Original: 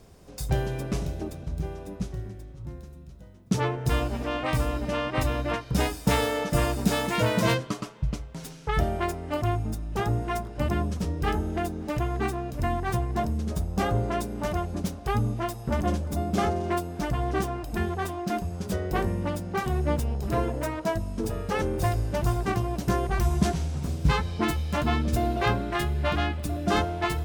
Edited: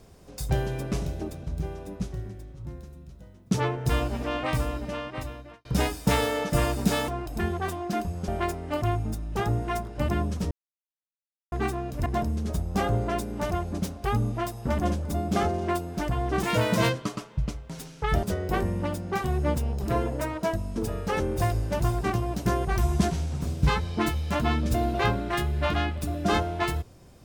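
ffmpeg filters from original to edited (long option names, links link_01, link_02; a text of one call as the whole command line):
ffmpeg -i in.wav -filter_complex "[0:a]asplit=9[link_01][link_02][link_03][link_04][link_05][link_06][link_07][link_08][link_09];[link_01]atrim=end=5.65,asetpts=PTS-STARTPTS,afade=type=out:start_time=4.42:duration=1.23[link_10];[link_02]atrim=start=5.65:end=7.082,asetpts=PTS-STARTPTS,afade=type=in:duration=0.004:curve=hsin[link_11];[link_03]atrim=start=17.448:end=18.652[link_12];[link_04]atrim=start=8.878:end=11.11,asetpts=PTS-STARTPTS,afade=type=out:start_time=2.228:duration=0.004:curve=hsin[link_13];[link_05]atrim=start=11.11:end=12.12,asetpts=PTS-STARTPTS,volume=0[link_14];[link_06]atrim=start=12.12:end=12.662,asetpts=PTS-STARTPTS,afade=type=in:duration=0.004:curve=hsin[link_15];[link_07]atrim=start=13.078:end=17.452[link_16];[link_08]atrim=start=7.078:end=8.882[link_17];[link_09]atrim=start=18.648[link_18];[link_10][link_11]concat=n=2:v=0:a=1[link_19];[link_19][link_12]acrossfade=duration=0.004:curve1=hsin:curve2=hsin[link_20];[link_13][link_14][link_15]concat=n=3:v=0:a=1[link_21];[link_20][link_21]acrossfade=duration=0.004:curve1=hsin:curve2=hsin[link_22];[link_22][link_16]acrossfade=duration=0.004:curve1=hsin:curve2=hsin[link_23];[link_23][link_17]acrossfade=duration=0.004:curve1=hsin:curve2=hsin[link_24];[link_24][link_18]acrossfade=duration=0.004:curve1=hsin:curve2=hsin" out.wav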